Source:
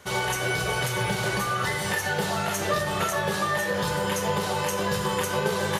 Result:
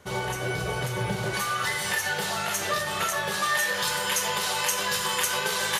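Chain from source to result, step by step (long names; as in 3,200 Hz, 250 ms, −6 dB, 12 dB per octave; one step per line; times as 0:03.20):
tilt shelving filter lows +3 dB, about 800 Hz, from 0:01.33 lows −5.5 dB, from 0:03.42 lows −10 dB
level −3 dB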